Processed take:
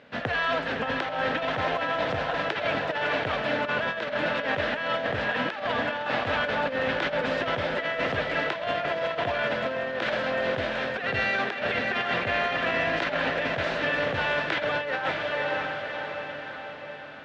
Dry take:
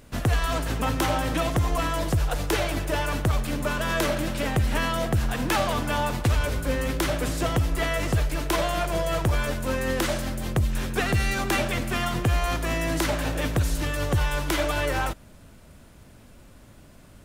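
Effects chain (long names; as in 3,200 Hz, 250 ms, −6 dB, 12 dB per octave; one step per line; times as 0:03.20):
loudspeaker in its box 280–3,700 Hz, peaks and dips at 340 Hz −10 dB, 530 Hz +3 dB, 1,100 Hz −4 dB, 1,700 Hz +5 dB
feedback delay with all-pass diffusion 577 ms, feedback 57%, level −5.5 dB
compressor whose output falls as the input rises −28 dBFS, ratio −0.5
level +1.5 dB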